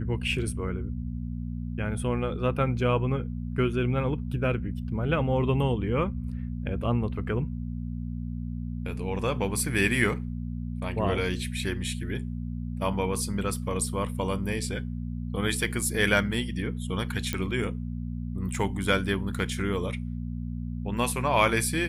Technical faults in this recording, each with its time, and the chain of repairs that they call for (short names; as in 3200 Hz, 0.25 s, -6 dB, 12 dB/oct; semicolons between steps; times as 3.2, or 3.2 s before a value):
hum 60 Hz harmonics 4 -33 dBFS
17.33 pop -13 dBFS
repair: de-click; de-hum 60 Hz, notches 4